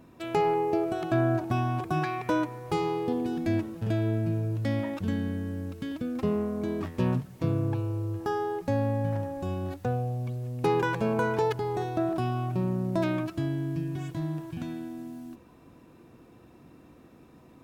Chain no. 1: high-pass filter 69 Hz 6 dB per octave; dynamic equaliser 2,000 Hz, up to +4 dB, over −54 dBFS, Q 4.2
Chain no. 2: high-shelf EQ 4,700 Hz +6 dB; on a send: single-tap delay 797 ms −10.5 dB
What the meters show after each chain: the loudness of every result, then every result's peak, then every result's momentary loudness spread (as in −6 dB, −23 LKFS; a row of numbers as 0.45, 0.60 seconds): −30.0, −29.0 LKFS; −13.5, −13.5 dBFS; 8, 8 LU